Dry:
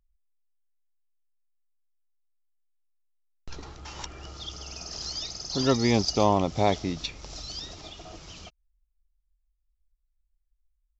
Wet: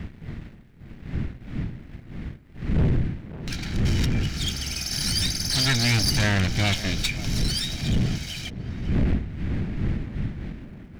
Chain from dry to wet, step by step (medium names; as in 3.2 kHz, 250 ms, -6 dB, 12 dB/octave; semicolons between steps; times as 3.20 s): comb filter that takes the minimum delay 1.3 ms; wind noise 180 Hz -32 dBFS; graphic EQ 500/1000/2000/4000 Hz -10/-10/+9/+3 dB; in parallel at 0 dB: peak limiter -20.5 dBFS, peak gain reduction 11.5 dB; on the sum: waveshaping leveller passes 1; saturation -16 dBFS, distortion -13 dB; on a send: tape echo 552 ms, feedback 63%, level -12 dB, low-pass 1.2 kHz; on the sum: tape noise reduction on one side only encoder only